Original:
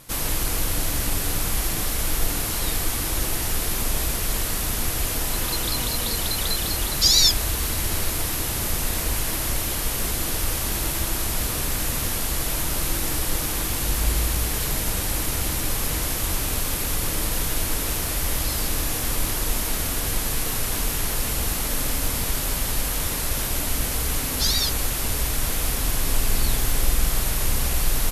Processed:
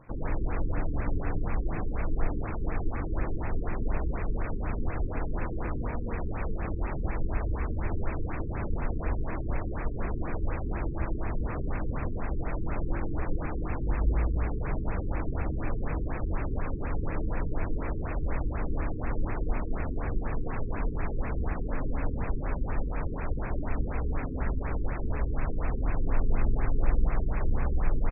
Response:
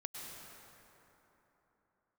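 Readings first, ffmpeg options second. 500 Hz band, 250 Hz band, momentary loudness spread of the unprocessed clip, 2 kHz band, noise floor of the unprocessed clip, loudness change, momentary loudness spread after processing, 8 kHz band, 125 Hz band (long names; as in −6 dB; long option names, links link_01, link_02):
−3.5 dB, −2.5 dB, 1 LU, −10.5 dB, −26 dBFS, −10.0 dB, 4 LU, below −40 dB, −2.5 dB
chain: -filter_complex "[0:a]acrossover=split=2400[link_01][link_02];[link_02]adelay=40[link_03];[link_01][link_03]amix=inputs=2:normalize=0,afftfilt=real='re*lt(b*sr/1024,440*pow(2700/440,0.5+0.5*sin(2*PI*4.1*pts/sr)))':imag='im*lt(b*sr/1024,440*pow(2700/440,0.5+0.5*sin(2*PI*4.1*pts/sr)))':win_size=1024:overlap=0.75,volume=-2.5dB"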